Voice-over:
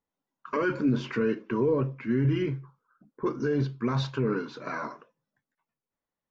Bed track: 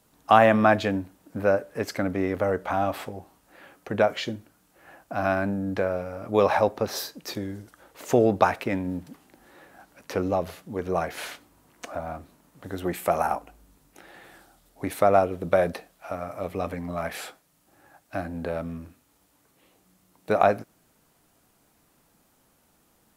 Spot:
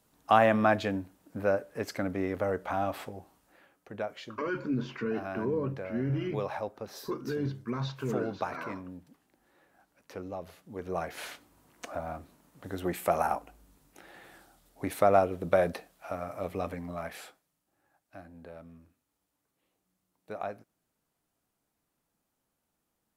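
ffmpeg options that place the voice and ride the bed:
-filter_complex "[0:a]adelay=3850,volume=-6dB[a];[1:a]volume=5dB,afade=t=out:st=3.42:d=0.26:silence=0.375837,afade=t=in:st=10.37:d=1.22:silence=0.298538,afade=t=out:st=16.48:d=1.16:silence=0.211349[b];[a][b]amix=inputs=2:normalize=0"

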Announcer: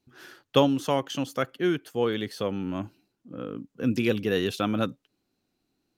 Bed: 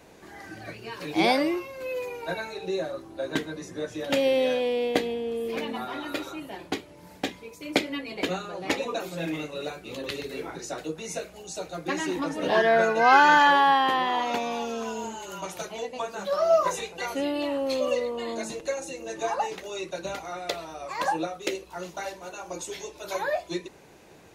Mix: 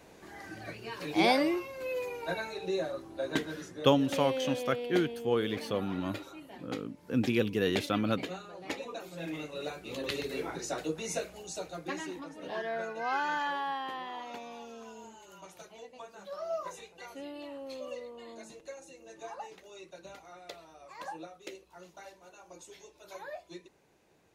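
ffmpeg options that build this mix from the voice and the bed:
-filter_complex "[0:a]adelay=3300,volume=-3.5dB[a];[1:a]volume=6.5dB,afade=t=out:st=3.44:d=0.46:silence=0.421697,afade=t=in:st=9.06:d=1.13:silence=0.334965,afade=t=out:st=11.19:d=1.06:silence=0.199526[b];[a][b]amix=inputs=2:normalize=0"

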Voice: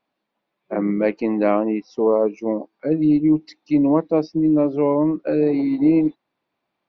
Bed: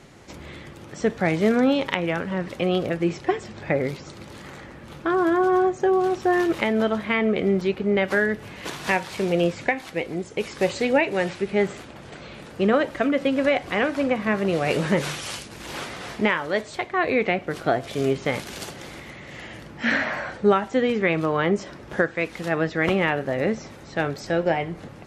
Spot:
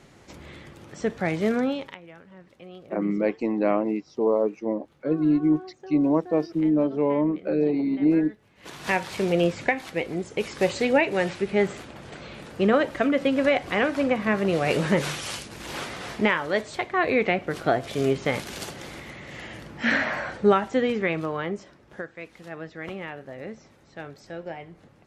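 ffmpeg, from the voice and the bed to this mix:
-filter_complex "[0:a]adelay=2200,volume=-4.5dB[a];[1:a]volume=17dB,afade=t=out:st=1.56:d=0.43:silence=0.133352,afade=t=in:st=8.55:d=0.46:silence=0.0891251,afade=t=out:st=20.61:d=1.15:silence=0.211349[b];[a][b]amix=inputs=2:normalize=0"

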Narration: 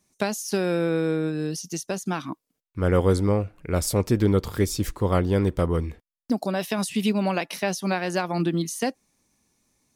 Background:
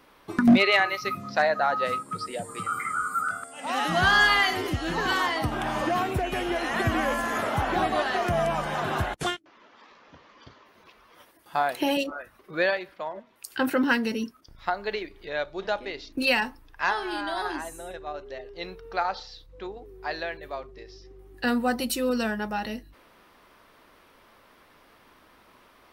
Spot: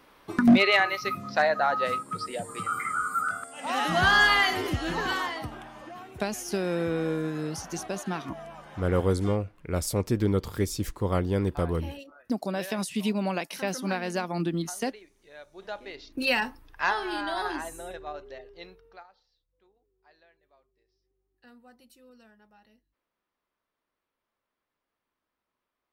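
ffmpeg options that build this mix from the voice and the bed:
-filter_complex "[0:a]adelay=6000,volume=-4.5dB[a];[1:a]volume=16.5dB,afade=t=out:st=4.82:d=0.87:silence=0.141254,afade=t=in:st=15.43:d=1.11:silence=0.141254,afade=t=out:st=17.85:d=1.22:silence=0.0354813[b];[a][b]amix=inputs=2:normalize=0"

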